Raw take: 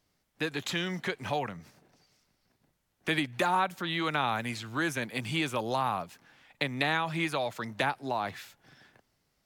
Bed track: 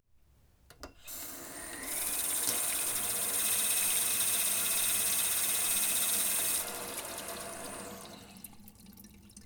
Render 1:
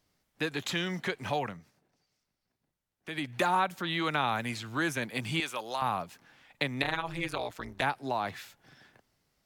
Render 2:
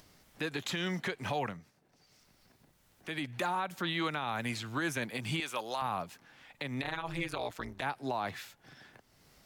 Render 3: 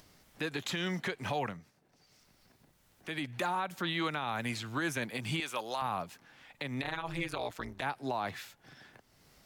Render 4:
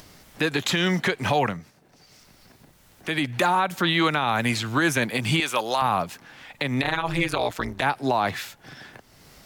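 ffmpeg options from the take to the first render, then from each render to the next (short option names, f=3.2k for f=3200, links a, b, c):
-filter_complex "[0:a]asettb=1/sr,asplit=3[a][b][c];[a]atrim=end=5.404[d];[b]atrim=start=5.4:end=5.82,asetpts=PTS-STARTPTS,afade=t=in:d=0.004:c=qsin,afade=t=out:st=0.416:d=0.004:c=qsin,highpass=f=1k:p=1[e];[c]atrim=start=5.816[f];[d][e]acrossfade=d=0.004:c1=hsin:c2=qsin[g];[g][f]acrossfade=d=0.004:c1=qsin:c2=hsin,asettb=1/sr,asplit=3[h][i][j];[h]atrim=end=6.824[k];[i]atrim=start=6.82:end=7.82,asetpts=PTS-STARTPTS,afade=t=in:d=0.004:c=qsin,afade=t=out:st=0.996:d=0.004:c=qsin,tremolo=f=180:d=0.919[l];[j]atrim=start=7.816[m];[k][l]acrossfade=d=0.004:c1=hsin:c2=qsin[n];[n][m]acrossfade=d=0.004:c1=qsin:c2=hsin,asplit=3[o][p][q];[o]atrim=end=1.66,asetpts=PTS-STARTPTS,afade=t=out:st=1.5:d=0.16:silence=0.298538[r];[p]atrim=start=1.66:end=3.14,asetpts=PTS-STARTPTS,volume=-10.5dB[s];[q]atrim=start=3.14,asetpts=PTS-STARTPTS,afade=t=in:d=0.16:silence=0.298538[t];[r][s][t]concat=n=3:v=0:a=1"
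-af "acompressor=mode=upward:threshold=-49dB:ratio=2.5,alimiter=limit=-23.5dB:level=0:latency=1:release=107"
-af anull
-af "volume=12dB"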